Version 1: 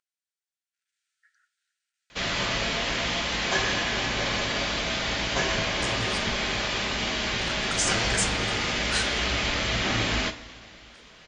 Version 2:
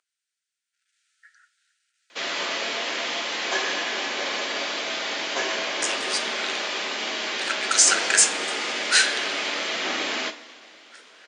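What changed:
speech +11.0 dB; master: add HPF 290 Hz 24 dB/oct

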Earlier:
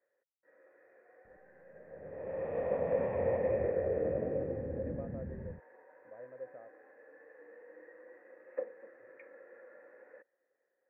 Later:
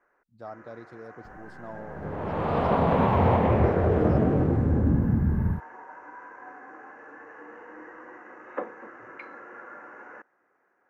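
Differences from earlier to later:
speech: entry -2.50 s; master: remove vocal tract filter e

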